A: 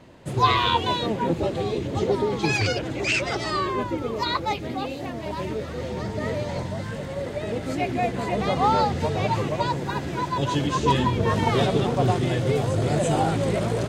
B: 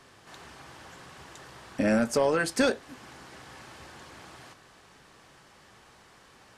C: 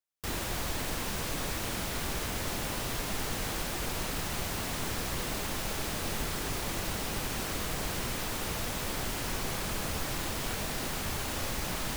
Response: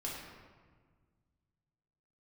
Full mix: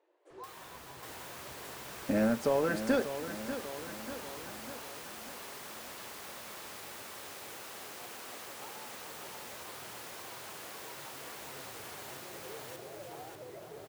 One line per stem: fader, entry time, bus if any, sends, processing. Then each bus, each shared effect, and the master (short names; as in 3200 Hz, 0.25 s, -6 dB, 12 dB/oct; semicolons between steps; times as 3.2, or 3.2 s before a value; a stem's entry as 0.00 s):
-19.5 dB, 0.00 s, bus A, no send, echo send -16.5 dB, shaped vibrato saw up 3.8 Hz, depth 160 cents
-3.5 dB, 0.30 s, no bus, no send, echo send -10.5 dB, dry
-2.5 dB, 0.20 s, bus A, no send, echo send -7.5 dB, Bessel high-pass 350 Hz, order 2; tilt +2.5 dB/oct
bus A: 0.0 dB, brick-wall FIR high-pass 310 Hz; compressor 4:1, threshold -43 dBFS, peak gain reduction 11.5 dB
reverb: off
echo: feedback echo 0.592 s, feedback 55%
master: high shelf 2300 Hz -11.5 dB